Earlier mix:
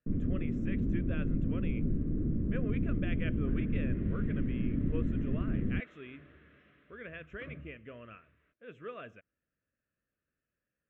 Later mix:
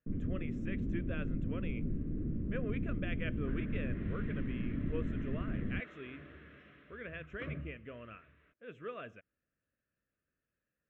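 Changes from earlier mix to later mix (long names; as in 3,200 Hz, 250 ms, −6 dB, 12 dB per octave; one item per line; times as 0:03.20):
first sound −5.0 dB
second sound +5.0 dB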